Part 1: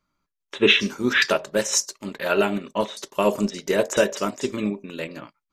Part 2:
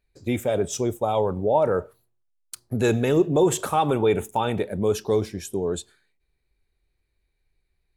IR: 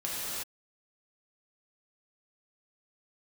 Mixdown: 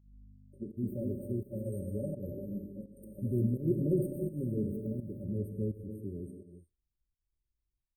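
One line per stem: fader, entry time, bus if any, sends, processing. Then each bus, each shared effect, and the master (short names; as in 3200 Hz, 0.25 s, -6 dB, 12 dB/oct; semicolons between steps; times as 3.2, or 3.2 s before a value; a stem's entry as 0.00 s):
-12.0 dB, 0.00 s, send -3 dB, compressor, threshold -23 dBFS, peak gain reduction 11.5 dB; hum 50 Hz, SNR 16 dB
-4.0 dB, 0.50 s, send -8.5 dB, upward expander 1.5:1, over -36 dBFS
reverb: on, pre-delay 3 ms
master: FFT band-reject 600–8500 Hz; fixed phaser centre 2400 Hz, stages 8; pump 84 bpm, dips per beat 1, -13 dB, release 0.212 s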